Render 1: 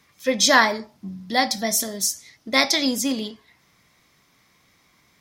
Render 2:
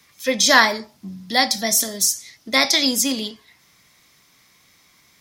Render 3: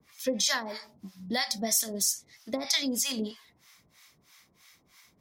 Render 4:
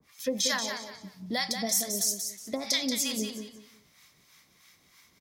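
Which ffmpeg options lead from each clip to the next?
ffmpeg -i in.wav -filter_complex "[0:a]highshelf=frequency=2400:gain=8.5,acrossover=split=360|690|2000[link_01][link_02][link_03][link_04];[link_04]alimiter=limit=-7dB:level=0:latency=1:release=34[link_05];[link_01][link_02][link_03][link_05]amix=inputs=4:normalize=0" out.wav
ffmpeg -i in.wav -filter_complex "[0:a]acompressor=threshold=-21dB:ratio=12,acrossover=split=760[link_01][link_02];[link_01]aeval=exprs='val(0)*(1-1/2+1/2*cos(2*PI*3.1*n/s))':channel_layout=same[link_03];[link_02]aeval=exprs='val(0)*(1-1/2-1/2*cos(2*PI*3.1*n/s))':channel_layout=same[link_04];[link_03][link_04]amix=inputs=2:normalize=0" out.wav
ffmpeg -i in.wav -af "aecho=1:1:182|364|546:0.447|0.121|0.0326,volume=-1dB" out.wav

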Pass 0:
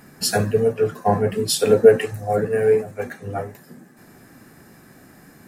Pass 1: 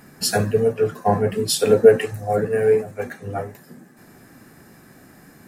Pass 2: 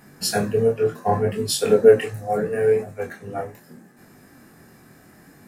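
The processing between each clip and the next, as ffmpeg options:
ffmpeg -i in.wav -af anull out.wav
ffmpeg -i in.wav -af "flanger=delay=20:depth=6.3:speed=0.72,volume=1dB" out.wav

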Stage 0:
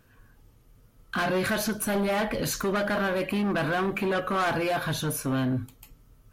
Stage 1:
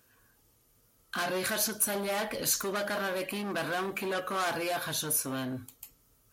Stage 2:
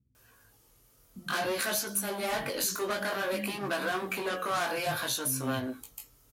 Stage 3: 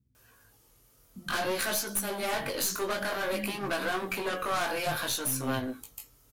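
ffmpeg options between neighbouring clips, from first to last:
ffmpeg -i in.wav -af "highpass=41,bass=frequency=250:gain=-8,treble=frequency=4000:gain=10,volume=-5dB" out.wav
ffmpeg -i in.wav -filter_complex "[0:a]acompressor=threshold=-32dB:ratio=4,flanger=delay=15:depth=7.8:speed=0.56,acrossover=split=230[link_01][link_02];[link_02]adelay=150[link_03];[link_01][link_03]amix=inputs=2:normalize=0,volume=7dB" out.wav
ffmpeg -i in.wav -af "aeval=exprs='(tanh(12.6*val(0)+0.6)-tanh(0.6))/12.6':channel_layout=same,volume=3.5dB" out.wav

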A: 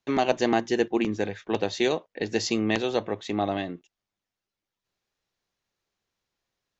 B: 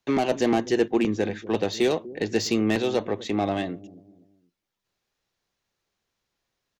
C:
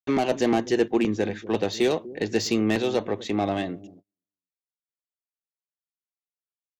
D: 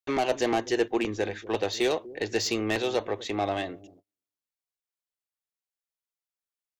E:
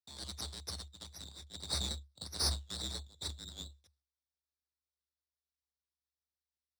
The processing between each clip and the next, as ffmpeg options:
ffmpeg -i in.wav -filter_complex "[0:a]acrossover=split=480[link_01][link_02];[link_01]aecho=1:1:245|490|735:0.188|0.0678|0.0244[link_03];[link_02]asoftclip=type=tanh:threshold=-25.5dB[link_04];[link_03][link_04]amix=inputs=2:normalize=0,volume=3dB" out.wav
ffmpeg -i in.wav -af "agate=range=-39dB:threshold=-45dB:ratio=16:detection=peak" out.wav
ffmpeg -i in.wav -af "equalizer=frequency=190:width=1.1:gain=-12.5" out.wav
ffmpeg -i in.wav -af "asuperpass=centerf=4500:order=12:qfactor=1.8,aeval=exprs='max(val(0),0)':channel_layout=same,afreqshift=70,volume=4dB" out.wav

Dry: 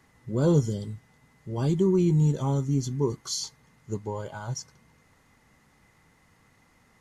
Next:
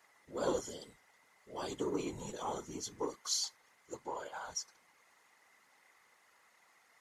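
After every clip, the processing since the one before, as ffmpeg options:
ffmpeg -i in.wav -af "aeval=exprs='0.299*(cos(1*acos(clip(val(0)/0.299,-1,1)))-cos(1*PI/2))+0.00668*(cos(6*acos(clip(val(0)/0.299,-1,1)))-cos(6*PI/2))':channel_layout=same,highpass=630,afftfilt=real='hypot(re,im)*cos(2*PI*random(0))':imag='hypot(re,im)*sin(2*PI*random(1))':win_size=512:overlap=0.75,volume=3.5dB" out.wav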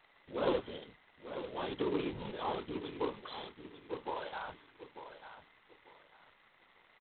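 ffmpeg -i in.wav -filter_complex "[0:a]asplit=2[link_01][link_02];[link_02]aecho=0:1:894|1788|2682:0.299|0.0806|0.0218[link_03];[link_01][link_03]amix=inputs=2:normalize=0,volume=2dB" -ar 8000 -c:a adpcm_g726 -b:a 16k out.wav

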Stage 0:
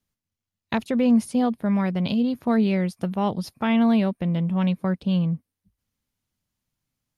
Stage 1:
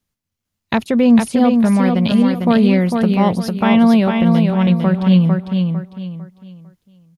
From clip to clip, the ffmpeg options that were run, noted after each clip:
ffmpeg -i in.wav -filter_complex "[0:a]dynaudnorm=framelen=140:gausssize=5:maxgain=3.5dB,asplit=2[link_01][link_02];[link_02]aecho=0:1:451|902|1353|1804:0.596|0.185|0.0572|0.0177[link_03];[link_01][link_03]amix=inputs=2:normalize=0,volume=4dB" out.wav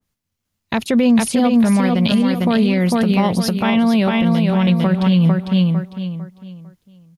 ffmpeg -i in.wav -af "alimiter=limit=-10dB:level=0:latency=1:release=89,adynamicequalizer=threshold=0.0141:dfrequency=1900:dqfactor=0.7:tfrequency=1900:tqfactor=0.7:attack=5:release=100:ratio=0.375:range=2.5:mode=boostabove:tftype=highshelf,volume=2.5dB" out.wav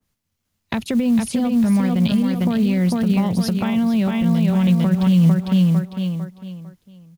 ffmpeg -i in.wav -filter_complex "[0:a]acrossover=split=200[link_01][link_02];[link_02]acompressor=threshold=-26dB:ratio=6[link_03];[link_01][link_03]amix=inputs=2:normalize=0,acrusher=bits=8:mode=log:mix=0:aa=0.000001,volume=2dB" out.wav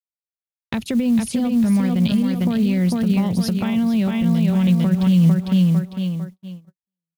ffmpeg -i in.wav -af "agate=range=-45dB:threshold=-33dB:ratio=16:detection=peak,equalizer=frequency=940:width_type=o:width=1.8:gain=-3.5" out.wav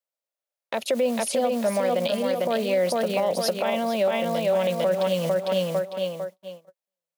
ffmpeg -i in.wav -af "highpass=frequency=570:width_type=q:width=5.6,alimiter=limit=-16.5dB:level=0:latency=1:release=48,volume=2dB" out.wav

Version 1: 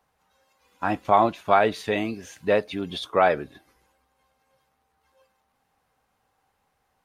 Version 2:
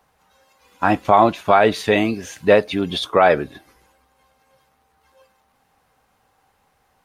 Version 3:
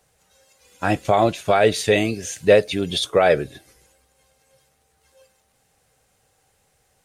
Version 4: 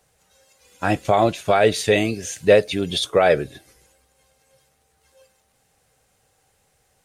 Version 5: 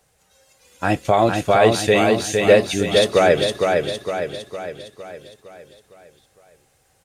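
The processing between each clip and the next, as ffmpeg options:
ffmpeg -i in.wav -af "alimiter=level_in=9.5dB:limit=-1dB:release=50:level=0:latency=1,volume=-1dB" out.wav
ffmpeg -i in.wav -af "equalizer=frequency=125:width_type=o:width=1:gain=4,equalizer=frequency=250:width_type=o:width=1:gain=-6,equalizer=frequency=500:width_type=o:width=1:gain=4,equalizer=frequency=1000:width_type=o:width=1:gain=-11,equalizer=frequency=8000:width_type=o:width=1:gain=10" out.wav
ffmpeg -i in.wav -af anull out.wav
ffmpeg -i in.wav -af "aecho=1:1:459|918|1377|1836|2295|2754|3213:0.631|0.322|0.164|0.0837|0.0427|0.0218|0.0111,volume=1dB" out.wav

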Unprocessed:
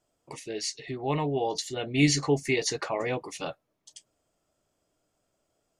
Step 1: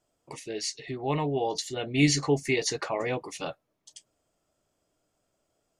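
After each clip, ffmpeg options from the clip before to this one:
ffmpeg -i in.wav -af anull out.wav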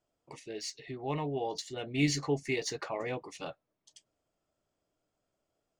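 ffmpeg -i in.wav -af "adynamicsmooth=sensitivity=5.5:basefreq=7700,volume=-6dB" out.wav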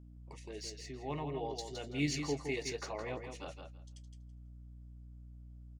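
ffmpeg -i in.wav -filter_complex "[0:a]aeval=exprs='val(0)+0.00447*(sin(2*PI*60*n/s)+sin(2*PI*2*60*n/s)/2+sin(2*PI*3*60*n/s)/3+sin(2*PI*4*60*n/s)/4+sin(2*PI*5*60*n/s)/5)':channel_layout=same,asplit=2[link_01][link_02];[link_02]aecho=0:1:165|330|495:0.473|0.0804|0.0137[link_03];[link_01][link_03]amix=inputs=2:normalize=0,volume=-5.5dB" out.wav

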